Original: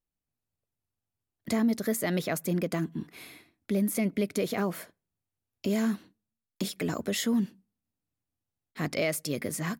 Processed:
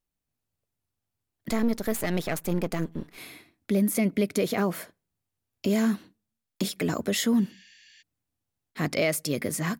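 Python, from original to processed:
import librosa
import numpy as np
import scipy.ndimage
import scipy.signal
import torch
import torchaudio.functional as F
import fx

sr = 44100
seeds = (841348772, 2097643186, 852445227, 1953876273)

y = fx.halfwave_gain(x, sr, db=-12.0, at=(1.5, 3.18))
y = fx.spec_repair(y, sr, seeds[0], start_s=7.51, length_s=0.48, low_hz=1600.0, high_hz=7500.0, source='before')
y = F.gain(torch.from_numpy(y), 3.5).numpy()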